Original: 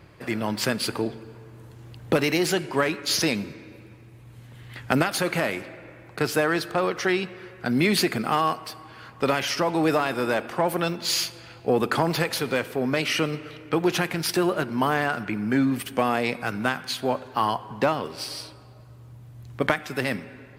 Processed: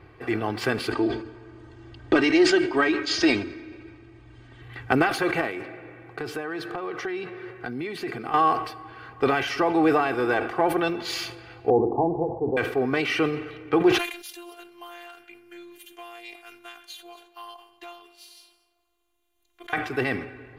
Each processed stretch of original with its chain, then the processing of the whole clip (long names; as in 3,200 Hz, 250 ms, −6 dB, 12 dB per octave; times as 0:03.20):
0:00.92–0:04.62: Chebyshev low-pass filter 9,000 Hz, order 6 + parametric band 4,800 Hz +5 dB 0.67 octaves + comb filter 3.2 ms, depth 63%
0:05.41–0:08.34: low shelf with overshoot 100 Hz −7 dB, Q 1.5 + downward compressor, threshold −29 dBFS
0:11.70–0:12.57: Butterworth low-pass 970 Hz 96 dB per octave + mains-hum notches 50/100/150/200/250/300/350 Hz
0:13.98–0:19.73: phases set to zero 347 Hz + first-order pre-emphasis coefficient 0.97 + single-tap delay 230 ms −19.5 dB
whole clip: bass and treble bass −1 dB, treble −14 dB; comb filter 2.6 ms, depth 66%; level that may fall only so fast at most 89 dB per second